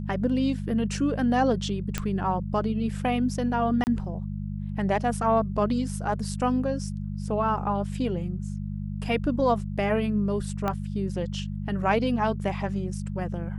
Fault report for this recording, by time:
hum 50 Hz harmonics 4 -32 dBFS
1.98 s: pop -12 dBFS
3.84–3.87 s: dropout 29 ms
10.68 s: pop -15 dBFS

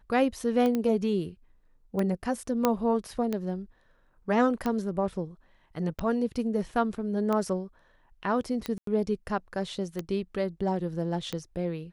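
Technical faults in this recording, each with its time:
tick 45 rpm -17 dBFS
0.75 s: pop -17 dBFS
2.65 s: pop -9 dBFS
8.78–8.87 s: dropout 93 ms

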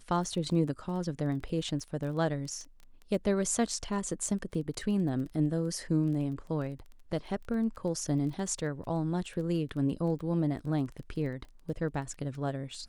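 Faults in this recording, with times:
crackle 15 per s -39 dBFS

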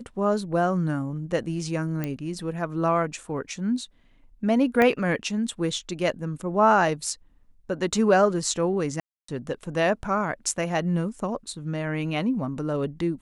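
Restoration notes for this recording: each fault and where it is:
2.04 s: pop -15 dBFS
4.82 s: pop -10 dBFS
9.00–9.28 s: dropout 284 ms

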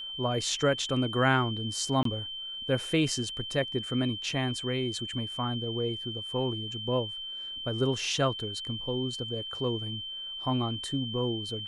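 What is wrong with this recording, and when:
whine 3.1 kHz -36 dBFS
2.03–2.05 s: dropout 23 ms

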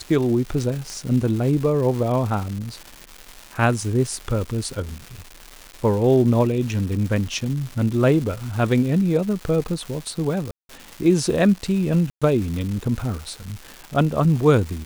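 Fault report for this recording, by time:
crackle 450 per s -29 dBFS
0.90 s: pop
10.51–10.69 s: dropout 182 ms
12.10–12.22 s: dropout 116 ms

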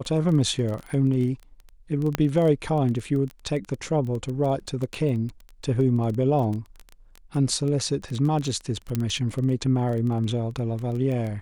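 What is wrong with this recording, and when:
crackle 15 per s -28 dBFS
2.15 s: pop -9 dBFS
8.95 s: pop -12 dBFS

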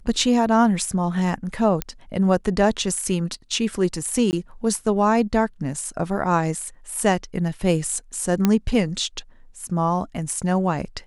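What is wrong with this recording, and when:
1.82 s: pop -8 dBFS
4.31–4.33 s: dropout 19 ms
8.45 s: pop -5 dBFS

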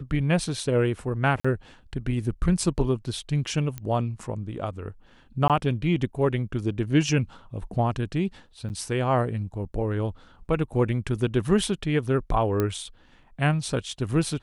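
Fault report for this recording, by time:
1.40–1.45 s: dropout 45 ms
3.78 s: pop -19 dBFS
5.48–5.50 s: dropout 17 ms
8.69–8.70 s: dropout 9.2 ms
12.60 s: pop -12 dBFS

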